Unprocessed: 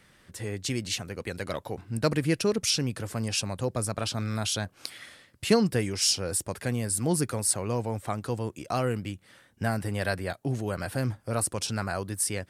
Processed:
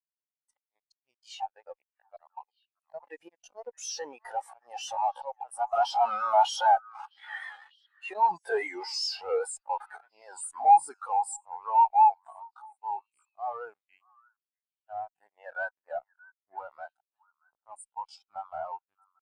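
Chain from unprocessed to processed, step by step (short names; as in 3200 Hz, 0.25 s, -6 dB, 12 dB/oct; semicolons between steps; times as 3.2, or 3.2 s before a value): Doppler pass-by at 4.33, 22 m/s, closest 15 m; LPF 12000 Hz 24 dB/oct; auto swell 0.264 s; resonant high-pass 830 Hz, resonance Q 4.7; tempo 0.65×; in parallel at -7 dB: fuzz box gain 55 dB, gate -56 dBFS; on the sum: vibrato 5 Hz 62 cents; on a send: delay with a stepping band-pass 0.629 s, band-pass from 1300 Hz, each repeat 1.4 oct, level -8 dB; on the sum: spectral expander 2.5:1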